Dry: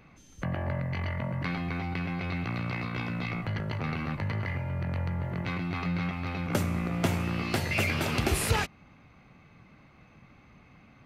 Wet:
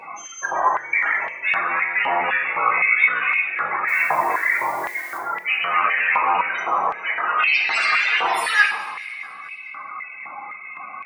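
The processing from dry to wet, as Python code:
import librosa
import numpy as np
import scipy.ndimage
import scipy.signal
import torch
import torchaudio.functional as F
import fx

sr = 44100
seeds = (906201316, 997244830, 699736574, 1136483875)

p1 = fx.high_shelf(x, sr, hz=3000.0, db=-6.0, at=(6.65, 7.4))
p2 = fx.fold_sine(p1, sr, drive_db=19, ceiling_db=-14.5)
p3 = p1 + F.gain(torch.from_numpy(p2), -6.0).numpy()
p4 = fx.spec_topn(p3, sr, count=32)
p5 = fx.dmg_noise_colour(p4, sr, seeds[0], colour='violet', level_db=-46.0, at=(3.87, 5.17), fade=0.02)
p6 = fx.high_shelf(p5, sr, hz=9100.0, db=-7.5)
p7 = fx.echo_feedback(p6, sr, ms=215, feedback_pct=60, wet_db=-18.0)
p8 = fx.rev_double_slope(p7, sr, seeds[1], early_s=0.8, late_s=2.3, knee_db=-18, drr_db=0.5)
p9 = fx.filter_held_highpass(p8, sr, hz=3.9, low_hz=910.0, high_hz=2500.0)
y = F.gain(torch.from_numpy(p9), 4.5).numpy()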